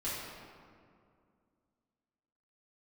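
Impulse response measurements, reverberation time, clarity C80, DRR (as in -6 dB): 2.3 s, 1.0 dB, -10.0 dB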